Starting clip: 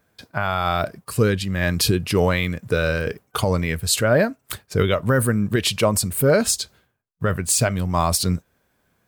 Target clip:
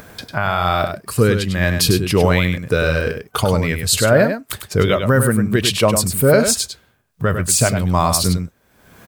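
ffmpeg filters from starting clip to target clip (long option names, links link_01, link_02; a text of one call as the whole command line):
ffmpeg -i in.wav -af "acompressor=mode=upward:threshold=-28dB:ratio=2.5,aecho=1:1:100:0.422,volume=3.5dB" out.wav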